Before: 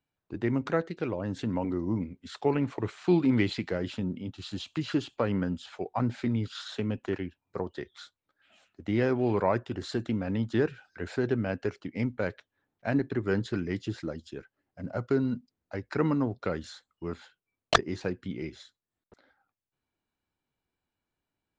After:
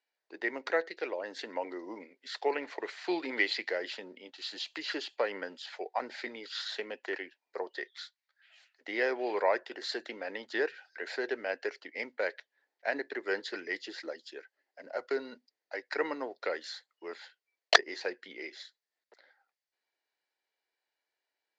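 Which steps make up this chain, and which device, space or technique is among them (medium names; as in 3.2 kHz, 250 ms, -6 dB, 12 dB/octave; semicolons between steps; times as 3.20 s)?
7.90–8.81 s: high-pass 1.1 kHz 12 dB/octave; phone speaker on a table (cabinet simulation 440–7100 Hz, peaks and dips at 1.2 kHz -7 dB, 1.9 kHz +9 dB, 4.6 kHz +8 dB)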